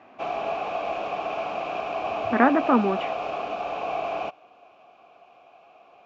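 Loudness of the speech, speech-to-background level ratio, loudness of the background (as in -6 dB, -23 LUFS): -22.5 LUFS, 7.0 dB, -29.5 LUFS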